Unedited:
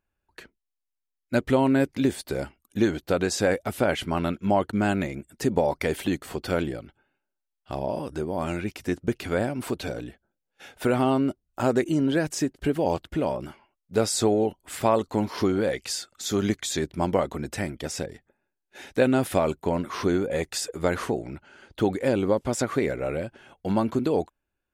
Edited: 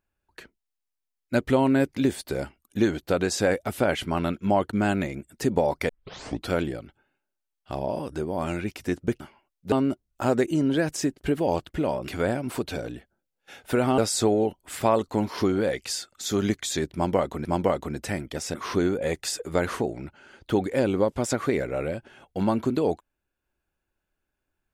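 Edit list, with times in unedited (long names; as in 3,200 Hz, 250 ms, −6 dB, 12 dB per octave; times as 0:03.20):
0:05.89: tape start 0.61 s
0:09.20–0:11.10: swap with 0:13.46–0:13.98
0:16.94–0:17.45: repeat, 2 plays
0:18.03–0:19.83: remove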